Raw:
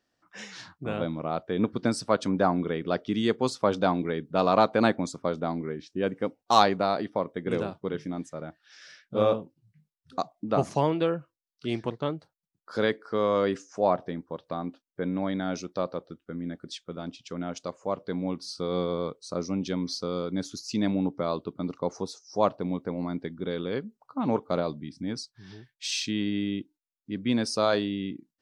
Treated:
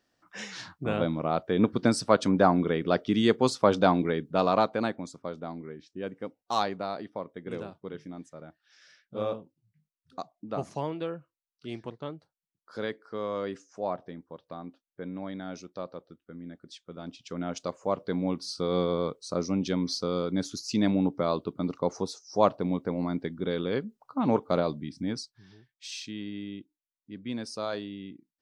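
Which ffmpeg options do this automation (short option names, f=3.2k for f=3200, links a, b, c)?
-af "volume=12dB,afade=t=out:st=4.01:d=0.89:silence=0.298538,afade=t=in:st=16.79:d=0.82:silence=0.334965,afade=t=out:st=25.05:d=0.45:silence=0.298538"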